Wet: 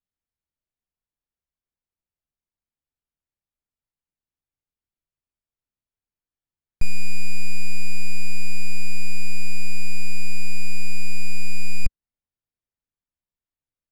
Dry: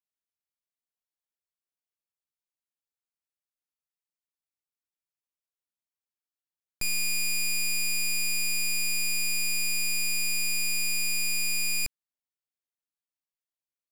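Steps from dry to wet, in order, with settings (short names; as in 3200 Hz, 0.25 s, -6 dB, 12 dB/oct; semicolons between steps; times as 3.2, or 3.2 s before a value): RIAA curve playback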